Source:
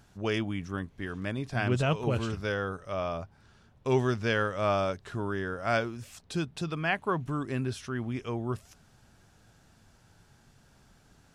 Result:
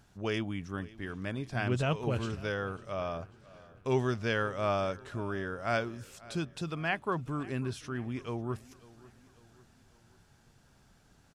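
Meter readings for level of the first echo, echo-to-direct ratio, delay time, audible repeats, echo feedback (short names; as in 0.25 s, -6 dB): -21.0 dB, -20.0 dB, 0.546 s, 3, 49%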